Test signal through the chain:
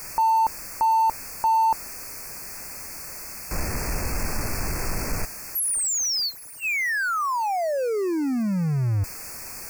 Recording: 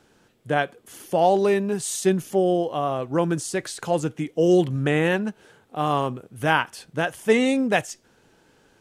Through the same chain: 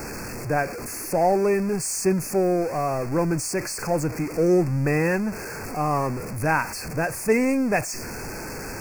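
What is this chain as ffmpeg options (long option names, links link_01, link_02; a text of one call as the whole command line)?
ffmpeg -i in.wav -af "aeval=exprs='val(0)+0.5*0.0531*sgn(val(0))':channel_layout=same,asuperstop=centerf=3400:order=20:qfactor=2,lowshelf=frequency=71:gain=9,volume=-3dB" out.wav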